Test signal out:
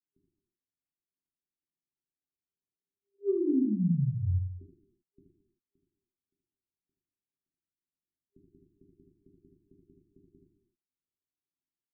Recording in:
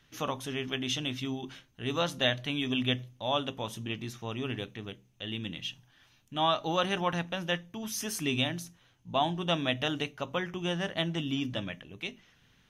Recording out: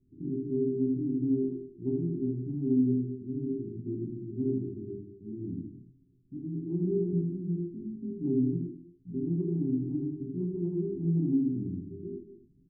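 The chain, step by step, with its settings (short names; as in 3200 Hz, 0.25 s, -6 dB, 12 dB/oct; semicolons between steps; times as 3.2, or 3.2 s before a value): FFT band-reject 400–12000 Hz; treble ducked by the level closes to 520 Hz, closed at -29 dBFS; low shelf 360 Hz -10 dB; non-linear reverb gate 0.34 s falling, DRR 1 dB; in parallel at -1 dB: compressor, threshold -37 dBFS; on the sum: low-pass opened by the level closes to 430 Hz, open at -22.5 dBFS; early reflections 23 ms -3.5 dB, 78 ms -5 dB; gain +1.5 dB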